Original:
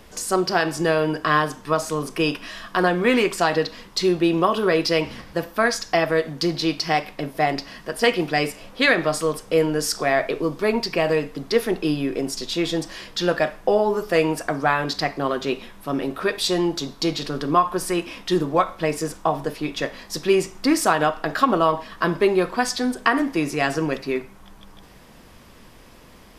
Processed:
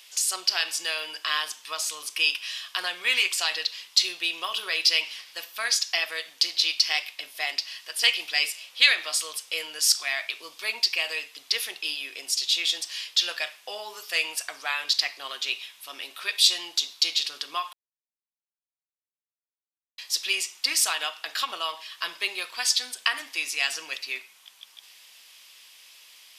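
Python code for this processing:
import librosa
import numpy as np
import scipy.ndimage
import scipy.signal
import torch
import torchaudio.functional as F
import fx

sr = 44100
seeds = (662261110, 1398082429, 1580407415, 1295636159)

y = fx.highpass(x, sr, hz=240.0, slope=6, at=(6.3, 6.8))
y = fx.peak_eq(y, sr, hz=480.0, db=-12.5, octaves=0.44, at=(9.79, 10.39))
y = fx.edit(y, sr, fx.silence(start_s=17.73, length_s=2.25), tone=tone)
y = scipy.signal.sosfilt(scipy.signal.butter(2, 1300.0, 'highpass', fs=sr, output='sos'), y)
y = fx.high_shelf_res(y, sr, hz=2100.0, db=9.5, q=1.5)
y = F.gain(torch.from_numpy(y), -5.5).numpy()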